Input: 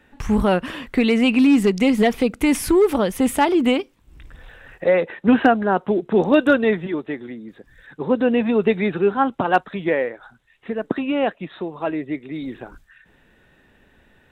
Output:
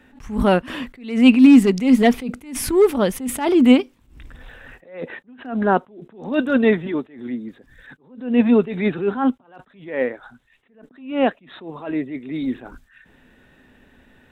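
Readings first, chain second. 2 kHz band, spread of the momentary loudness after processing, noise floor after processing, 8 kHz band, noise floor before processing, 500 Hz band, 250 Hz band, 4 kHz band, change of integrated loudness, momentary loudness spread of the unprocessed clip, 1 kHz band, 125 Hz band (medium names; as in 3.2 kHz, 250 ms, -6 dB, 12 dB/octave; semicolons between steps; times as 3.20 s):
-3.0 dB, 20 LU, -58 dBFS, +1.0 dB, -57 dBFS, -2.0 dB, +2.0 dB, -1.0 dB, +1.0 dB, 15 LU, -4.0 dB, -0.5 dB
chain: peaking EQ 250 Hz +8.5 dB 0.23 oct; attacks held to a fixed rise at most 120 dB/s; trim +2 dB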